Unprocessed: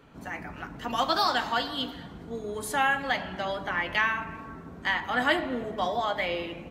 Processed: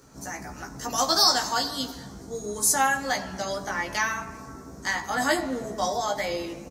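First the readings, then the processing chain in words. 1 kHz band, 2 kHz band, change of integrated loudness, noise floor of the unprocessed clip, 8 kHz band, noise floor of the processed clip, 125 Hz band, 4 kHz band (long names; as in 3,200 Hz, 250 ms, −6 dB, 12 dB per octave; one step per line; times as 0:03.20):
+1.0 dB, −1.0 dB, +3.0 dB, −45 dBFS, +18.0 dB, −43 dBFS, +1.0 dB, +5.5 dB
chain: high shelf with overshoot 4,200 Hz +12 dB, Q 3
surface crackle 69 per second −54 dBFS
double-tracking delay 15 ms −4 dB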